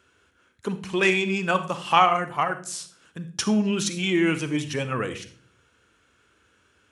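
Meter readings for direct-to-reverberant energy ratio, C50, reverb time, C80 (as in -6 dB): 10.5 dB, 12.0 dB, 0.45 s, 17.0 dB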